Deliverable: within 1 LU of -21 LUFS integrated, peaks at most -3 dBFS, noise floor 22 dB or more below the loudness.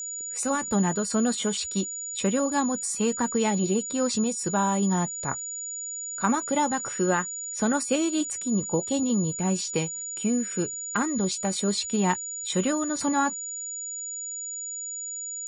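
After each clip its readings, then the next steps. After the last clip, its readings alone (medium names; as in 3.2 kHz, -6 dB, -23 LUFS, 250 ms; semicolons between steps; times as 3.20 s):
tick rate 25 per s; steady tone 6.9 kHz; tone level -32 dBFS; loudness -26.5 LUFS; peak level -10.5 dBFS; loudness target -21.0 LUFS
-> de-click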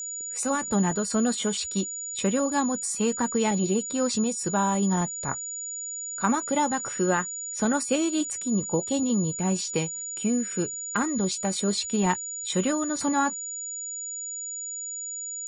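tick rate 0.13 per s; steady tone 6.9 kHz; tone level -32 dBFS
-> band-stop 6.9 kHz, Q 30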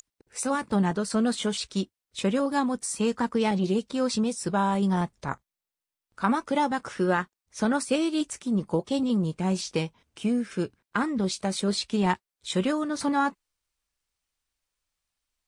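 steady tone not found; loudness -27.5 LUFS; peak level -10.5 dBFS; loudness target -21.0 LUFS
-> trim +6.5 dB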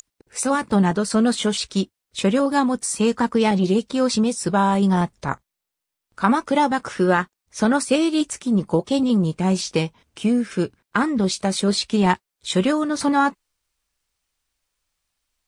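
loudness -21.0 LUFS; peak level -4.5 dBFS; noise floor -83 dBFS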